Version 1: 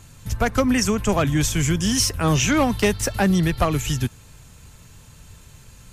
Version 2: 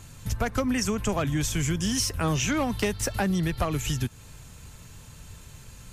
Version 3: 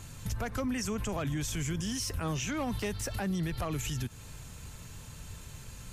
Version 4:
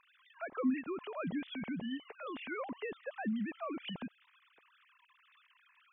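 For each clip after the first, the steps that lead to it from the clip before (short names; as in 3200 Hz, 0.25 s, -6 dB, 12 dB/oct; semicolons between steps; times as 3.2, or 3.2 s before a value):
compressor 2.5:1, threshold -26 dBFS, peak gain reduction 8.5 dB
limiter -26 dBFS, peak gain reduction 11 dB
sine-wave speech; gain -6 dB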